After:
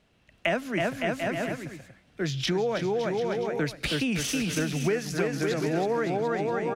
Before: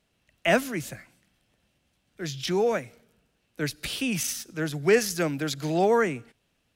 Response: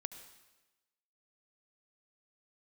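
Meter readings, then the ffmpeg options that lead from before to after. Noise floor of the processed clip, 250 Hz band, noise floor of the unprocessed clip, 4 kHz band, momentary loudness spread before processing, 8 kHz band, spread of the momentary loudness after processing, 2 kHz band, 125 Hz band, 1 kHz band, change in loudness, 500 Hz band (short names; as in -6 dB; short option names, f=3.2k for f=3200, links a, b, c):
-63 dBFS, +1.5 dB, -73 dBFS, +0.5 dB, 13 LU, -3.0 dB, 5 LU, -0.5 dB, +2.5 dB, -1.0 dB, -1.5 dB, -1.0 dB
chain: -filter_complex "[0:a]aemphasis=mode=reproduction:type=50kf,asplit=2[a][b];[b]aecho=0:1:320|560|740|875|976.2:0.631|0.398|0.251|0.158|0.1[c];[a][c]amix=inputs=2:normalize=0,acompressor=threshold=-32dB:ratio=6,volume=7.5dB"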